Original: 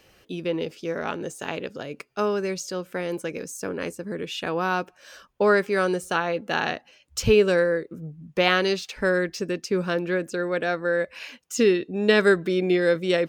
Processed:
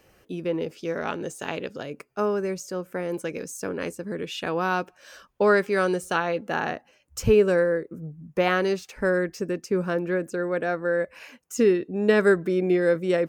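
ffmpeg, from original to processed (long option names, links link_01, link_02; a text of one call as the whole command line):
ffmpeg -i in.wav -af "asetnsamples=nb_out_samples=441:pad=0,asendcmd='0.75 equalizer g -1;1.9 equalizer g -11.5;3.14 equalizer g -2;6.49 equalizer g -11.5',equalizer=frequency=3700:width_type=o:width=1.3:gain=-8.5" out.wav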